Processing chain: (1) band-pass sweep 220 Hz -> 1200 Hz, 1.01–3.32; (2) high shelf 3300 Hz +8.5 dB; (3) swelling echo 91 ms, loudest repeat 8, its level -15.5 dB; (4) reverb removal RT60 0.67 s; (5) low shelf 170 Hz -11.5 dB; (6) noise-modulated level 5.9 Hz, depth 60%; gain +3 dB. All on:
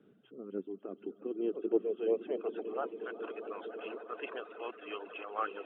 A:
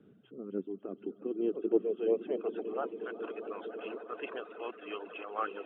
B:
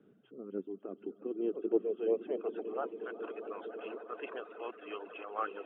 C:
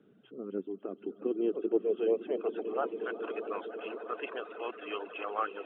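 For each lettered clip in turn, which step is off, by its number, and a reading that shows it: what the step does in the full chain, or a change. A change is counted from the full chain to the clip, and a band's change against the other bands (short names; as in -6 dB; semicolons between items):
5, 250 Hz band +2.0 dB; 2, 2 kHz band -2.0 dB; 6, crest factor change -2.5 dB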